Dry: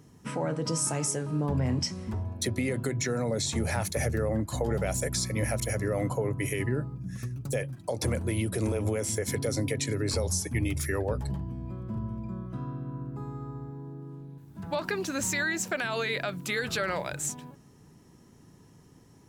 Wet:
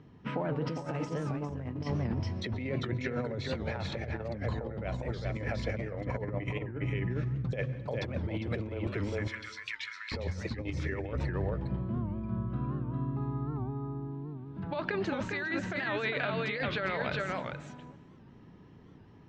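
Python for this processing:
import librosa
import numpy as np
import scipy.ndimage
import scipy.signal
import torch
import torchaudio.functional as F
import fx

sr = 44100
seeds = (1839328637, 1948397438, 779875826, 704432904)

y = fx.steep_highpass(x, sr, hz=1100.0, slope=48, at=(8.87, 10.12))
y = y + 10.0 ** (-4.5 / 20.0) * np.pad(y, (int(404 * sr / 1000.0), 0))[:len(y)]
y = fx.rev_plate(y, sr, seeds[0], rt60_s=1.2, hf_ratio=0.9, predelay_ms=105, drr_db=16.5)
y = fx.over_compress(y, sr, threshold_db=-30.0, ratio=-0.5)
y = scipy.signal.sosfilt(scipy.signal.butter(4, 3600.0, 'lowpass', fs=sr, output='sos'), y)
y = fx.record_warp(y, sr, rpm=78.0, depth_cents=160.0)
y = F.gain(torch.from_numpy(y), -2.0).numpy()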